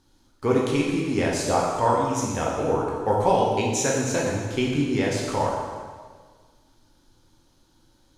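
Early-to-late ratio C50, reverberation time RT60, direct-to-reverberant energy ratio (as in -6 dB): 1.0 dB, 1.6 s, -3.0 dB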